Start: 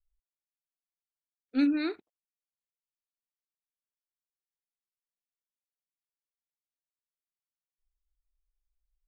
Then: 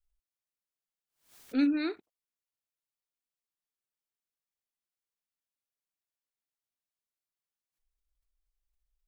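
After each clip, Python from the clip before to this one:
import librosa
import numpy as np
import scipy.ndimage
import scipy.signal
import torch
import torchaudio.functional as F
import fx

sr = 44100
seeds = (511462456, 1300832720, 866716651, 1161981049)

y = fx.pre_swell(x, sr, db_per_s=140.0)
y = y * librosa.db_to_amplitude(-1.0)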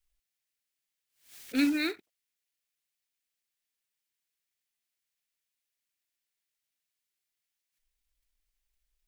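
y = fx.high_shelf_res(x, sr, hz=1500.0, db=7.0, q=1.5)
y = fx.quant_float(y, sr, bits=2)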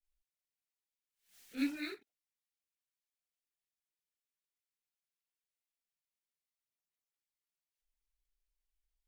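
y = fx.chorus_voices(x, sr, voices=6, hz=1.2, base_ms=27, depth_ms=3.8, mix_pct=65)
y = y * librosa.db_to_amplitude(-8.5)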